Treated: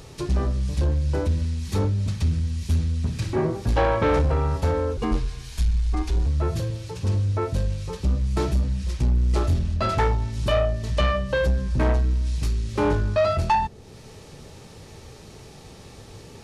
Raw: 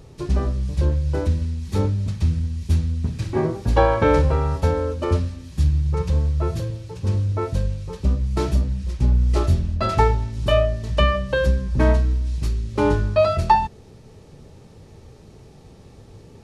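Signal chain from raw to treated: 4.97–6.26 frequency shift -130 Hz; soft clip -15 dBFS, distortion -13 dB; mismatched tape noise reduction encoder only

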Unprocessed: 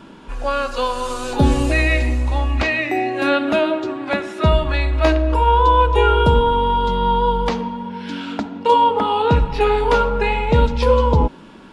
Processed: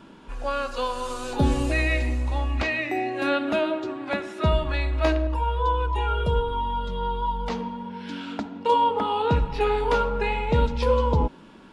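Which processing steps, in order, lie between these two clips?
5.27–7.5 cascading flanger falling 1.5 Hz; gain -6.5 dB

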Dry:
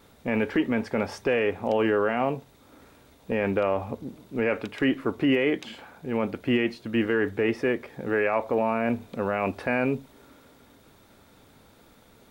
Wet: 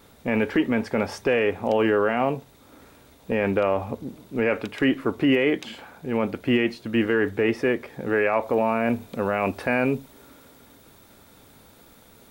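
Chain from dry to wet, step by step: high shelf 7800 Hz +3.5 dB, from 8.43 s +8.5 dB; gain +2.5 dB

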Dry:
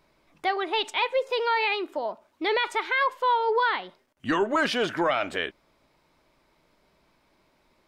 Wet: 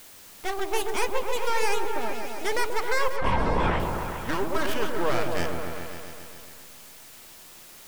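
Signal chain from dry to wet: tracing distortion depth 0.17 ms; half-wave rectifier; flange 0.68 Hz, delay 0.5 ms, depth 6.2 ms, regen -62%; added noise white -51 dBFS; 3.16–3.8 LPC vocoder at 8 kHz whisper; repeats that get brighter 0.135 s, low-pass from 750 Hz, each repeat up 1 oct, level -3 dB; gain +3 dB

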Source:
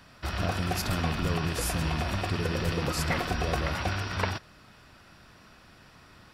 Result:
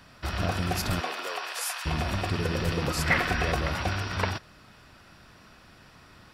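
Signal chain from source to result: 0.99–1.85 HPF 320 Hz -> 980 Hz 24 dB/oct; 3.06–3.52 bell 1900 Hz +8.5 dB 0.98 oct; gain +1 dB

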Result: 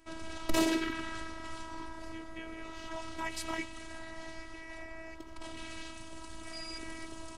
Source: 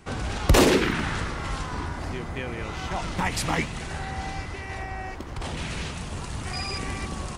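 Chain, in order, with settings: robotiser 324 Hz; gain -8.5 dB

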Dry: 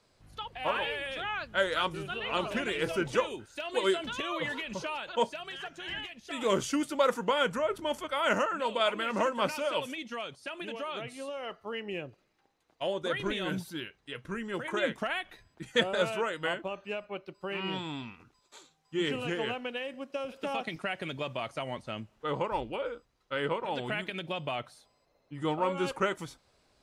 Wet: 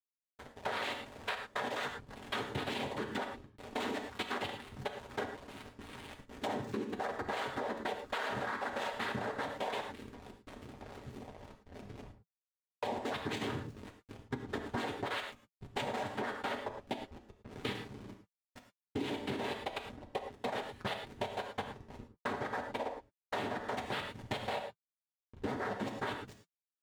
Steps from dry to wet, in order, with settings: level quantiser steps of 17 dB; noise vocoder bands 6; backlash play -41.5 dBFS; notch comb 170 Hz; non-linear reverb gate 0.13 s flat, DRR 5.5 dB; compressor 6:1, threshold -43 dBFS, peak gain reduction 13 dB; gain +8.5 dB

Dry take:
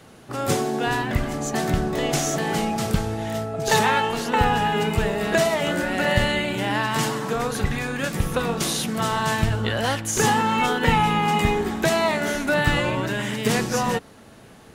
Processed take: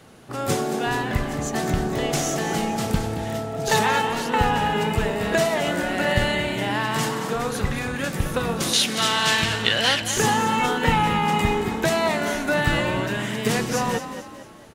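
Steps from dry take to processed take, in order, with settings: 8.73–10.02 weighting filter D; on a send: frequency-shifting echo 0.224 s, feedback 42%, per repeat +36 Hz, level -10.5 dB; on the sum: gain -1 dB

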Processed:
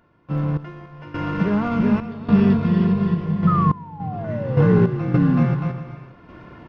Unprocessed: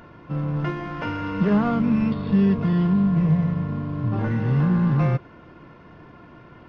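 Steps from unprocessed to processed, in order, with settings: bouncing-ball echo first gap 0.38 s, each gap 0.65×, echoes 5; painted sound fall, 3.47–5.46, 230–1300 Hz -24 dBFS; random-step tremolo, depth 90%; gain +3.5 dB

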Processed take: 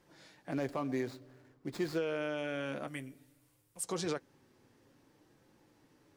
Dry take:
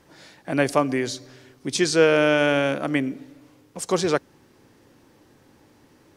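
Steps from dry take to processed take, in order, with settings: 0.51–1.98 median filter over 15 samples; 2.87–3.84 EQ curve 110 Hz 0 dB, 210 Hz -13 dB, 6200 Hz -2 dB, 8800 Hz +9 dB; limiter -15 dBFS, peak gain reduction 10.5 dB; flange 0.54 Hz, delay 5.5 ms, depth 2.7 ms, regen -47%; gain -7 dB

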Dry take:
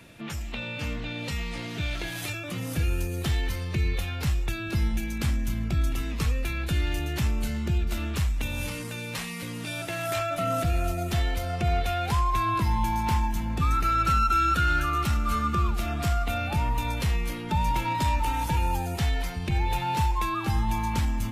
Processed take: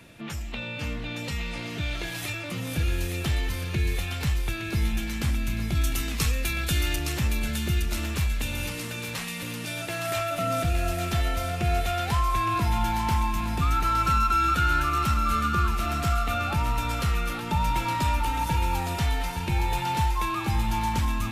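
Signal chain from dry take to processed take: 5.75–6.96 high shelf 3000 Hz +11 dB; thinning echo 0.865 s, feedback 72%, high-pass 1000 Hz, level -5 dB

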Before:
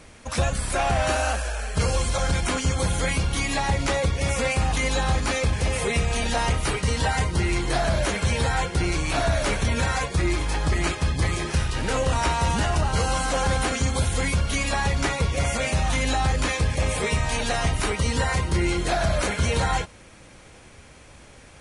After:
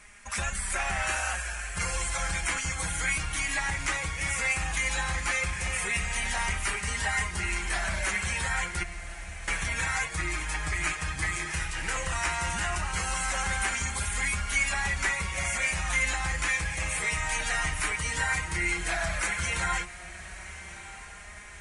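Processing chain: 8.83–9.48 passive tone stack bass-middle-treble 10-0-1; on a send: diffused feedback echo 1.234 s, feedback 58%, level -15 dB; on the sum: flange 0.14 Hz, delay 4.8 ms, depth 1.8 ms, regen +38%; graphic EQ 125/250/500/2000/4000/8000 Hz -8/-7/-10/+9/-6/+7 dB; gain -1.5 dB

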